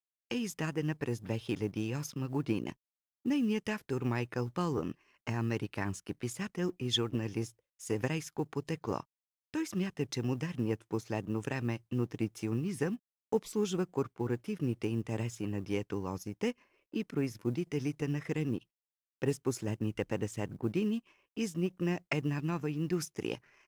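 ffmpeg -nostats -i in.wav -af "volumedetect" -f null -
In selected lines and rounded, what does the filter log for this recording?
mean_volume: -35.1 dB
max_volume: -16.2 dB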